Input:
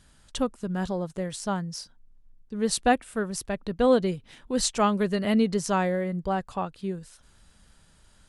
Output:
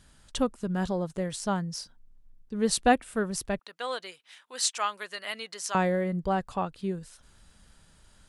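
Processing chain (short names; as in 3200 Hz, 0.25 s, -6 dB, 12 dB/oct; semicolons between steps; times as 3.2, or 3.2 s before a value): 3.59–5.75 HPF 1200 Hz 12 dB/oct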